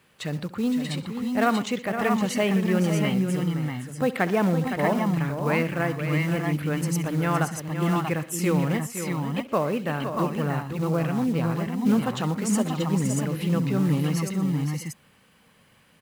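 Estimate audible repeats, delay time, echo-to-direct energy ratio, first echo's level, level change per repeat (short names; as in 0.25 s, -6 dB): 5, 67 ms, -2.0 dB, -17.0 dB, no steady repeat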